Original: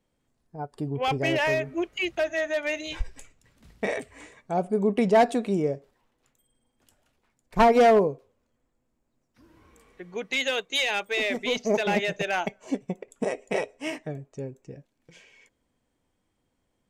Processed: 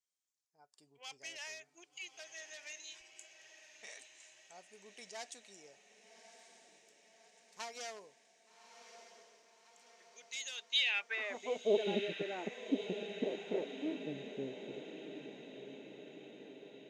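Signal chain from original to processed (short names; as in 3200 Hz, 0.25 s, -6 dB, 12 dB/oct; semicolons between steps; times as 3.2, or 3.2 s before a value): band-pass sweep 6300 Hz -> 320 Hz, 10.51–11.86; diffused feedback echo 1.183 s, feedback 60%, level -10.5 dB; gain -3 dB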